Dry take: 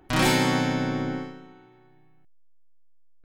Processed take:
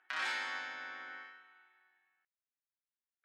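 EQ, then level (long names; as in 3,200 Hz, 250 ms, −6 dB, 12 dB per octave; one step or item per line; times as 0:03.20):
dynamic equaliser 2,000 Hz, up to −8 dB, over −40 dBFS, Q 0.78
four-pole ladder band-pass 1,900 Hz, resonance 50%
+5.0 dB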